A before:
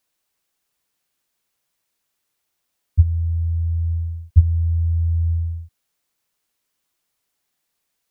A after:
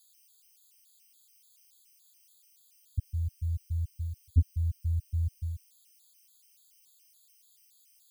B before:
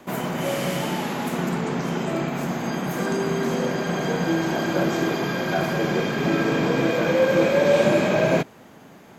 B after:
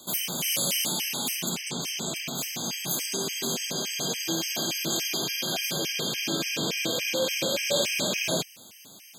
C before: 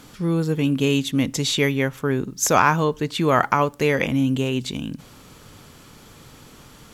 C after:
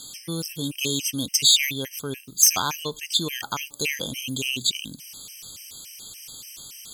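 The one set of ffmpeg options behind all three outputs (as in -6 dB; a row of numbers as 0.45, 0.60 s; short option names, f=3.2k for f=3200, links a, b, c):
-af "asoftclip=type=tanh:threshold=-5dB,aexciter=amount=4.7:drive=9.9:freq=2.5k,afftfilt=real='re*gt(sin(2*PI*3.5*pts/sr)*(1-2*mod(floor(b*sr/1024/1600),2)),0)':imag='im*gt(sin(2*PI*3.5*pts/sr)*(1-2*mod(floor(b*sr/1024/1600),2)),0)':win_size=1024:overlap=0.75,volume=-8.5dB"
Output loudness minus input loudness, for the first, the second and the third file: -12.5, -4.5, -1.5 LU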